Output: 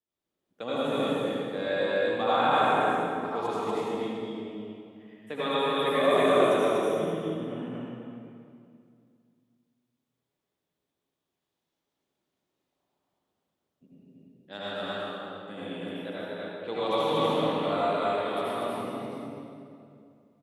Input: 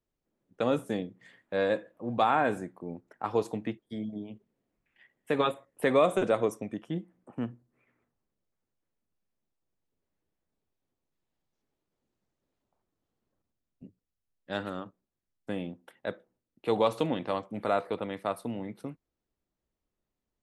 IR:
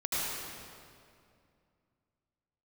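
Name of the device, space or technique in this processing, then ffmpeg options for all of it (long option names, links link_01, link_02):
stadium PA: -filter_complex "[0:a]asettb=1/sr,asplit=3[link_01][link_02][link_03];[link_01]atrim=end=16.084[link_04];[link_02]atrim=start=16.08:end=16.79,asetpts=PTS-STARTPTS,afade=type=in:duration=0.004:curve=qsin,afade=type=out:start_time=0.706:duration=0.004:curve=qsin,lowpass=6000[link_05];[link_03]atrim=start=16.786[link_06];[link_04][link_05]acrossfade=duration=0.004:curve1=hsin:curve2=qsin[link_07];[link_07][link_06]acrossfade=duration=0.004:curve1=qsin:curve2=hsin,highpass=frequency=210:poles=1,equalizer=frequency=3400:width_type=o:width=0.49:gain=6,aecho=1:1:239.1|288.6:0.891|0.316[link_08];[1:a]atrim=start_sample=2205[link_09];[link_08][link_09]afir=irnorm=-1:irlink=0,volume=-6.5dB"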